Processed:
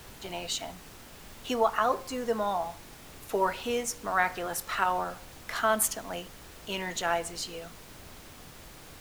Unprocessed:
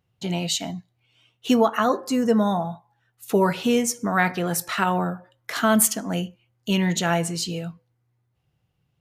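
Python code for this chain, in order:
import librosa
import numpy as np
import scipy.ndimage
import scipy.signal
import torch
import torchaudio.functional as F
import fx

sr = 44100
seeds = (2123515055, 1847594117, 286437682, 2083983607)

y = scipy.signal.sosfilt(scipy.signal.butter(2, 380.0, 'highpass', fs=sr, output='sos'), x)
y = fx.peak_eq(y, sr, hz=1000.0, db=5.0, octaves=1.8)
y = fx.dmg_noise_colour(y, sr, seeds[0], colour='pink', level_db=-40.0)
y = y * librosa.db_to_amplitude(-8.0)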